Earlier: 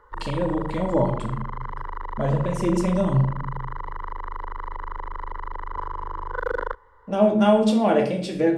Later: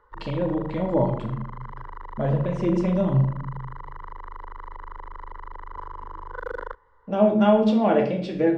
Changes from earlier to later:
speech: add air absorption 180 m; background -6.0 dB

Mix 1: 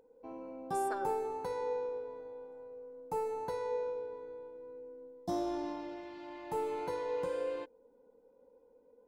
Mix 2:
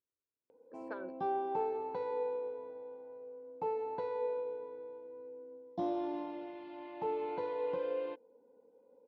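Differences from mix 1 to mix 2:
background: entry +0.50 s; master: add speaker cabinet 140–3400 Hz, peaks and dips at 150 Hz -4 dB, 1300 Hz -5 dB, 1800 Hz -5 dB

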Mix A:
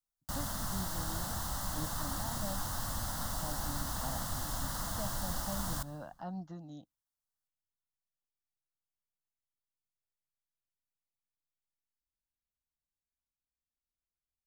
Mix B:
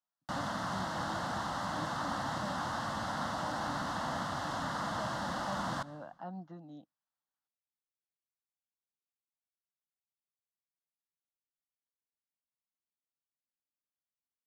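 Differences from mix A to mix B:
background +7.0 dB; master: add BPF 190–3000 Hz

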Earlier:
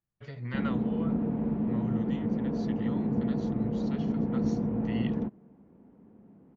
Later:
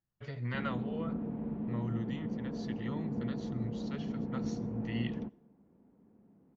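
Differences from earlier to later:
background -8.5 dB; reverb: on, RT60 0.45 s

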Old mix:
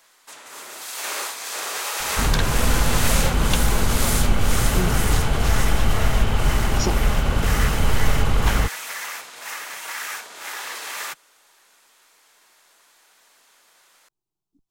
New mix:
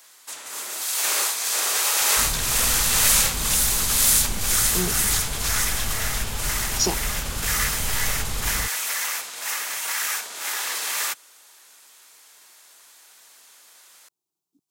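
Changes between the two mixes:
speech: add HPF 200 Hz; second sound -11.0 dB; master: add high shelf 3800 Hz +10 dB

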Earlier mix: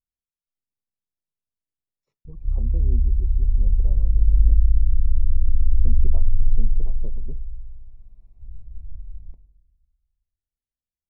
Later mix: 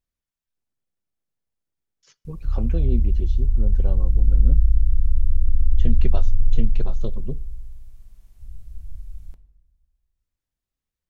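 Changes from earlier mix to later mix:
speech +9.5 dB; master: remove running mean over 28 samples

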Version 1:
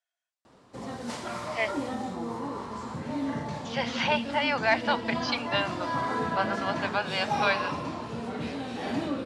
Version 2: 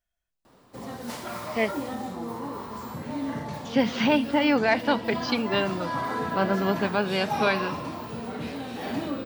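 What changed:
speech: remove HPF 640 Hz 24 dB/oct; master: remove LPF 9200 Hz 24 dB/oct

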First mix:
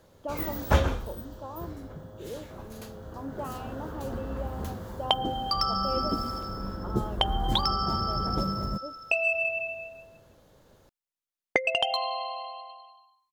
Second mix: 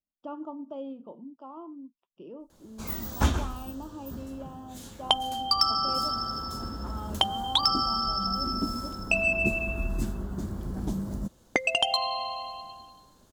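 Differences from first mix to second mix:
first sound: entry +2.50 s; second sound +3.5 dB; master: add graphic EQ 125/250/500/2000/8000 Hz -5/+5/-8/-5/+7 dB

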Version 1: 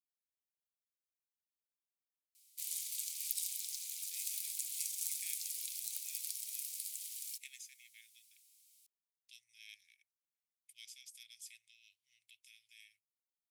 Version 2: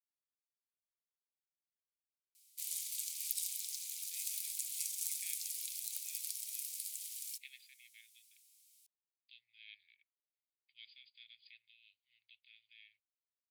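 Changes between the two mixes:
speech: add brick-wall FIR low-pass 4900 Hz; master: add bell 240 Hz -8.5 dB 1.2 oct

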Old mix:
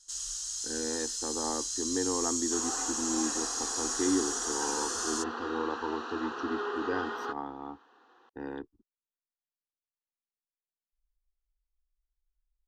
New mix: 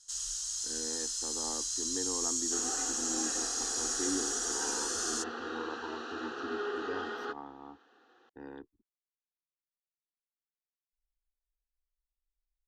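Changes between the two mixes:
speech -7.5 dB; second sound: add bell 1000 Hz -13.5 dB 0.32 oct

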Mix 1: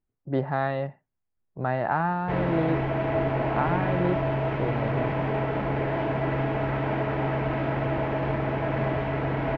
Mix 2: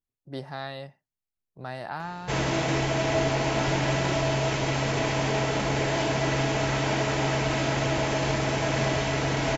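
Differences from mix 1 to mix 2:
speech -10.5 dB; master: remove Bessel low-pass 1600 Hz, order 4

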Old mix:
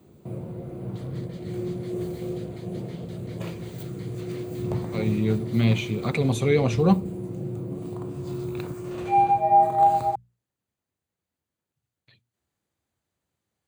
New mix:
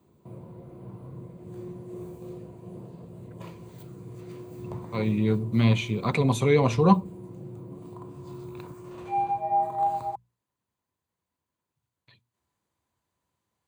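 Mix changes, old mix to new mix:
first sound -9.0 dB; second sound: muted; master: add bell 1000 Hz +12.5 dB 0.23 oct

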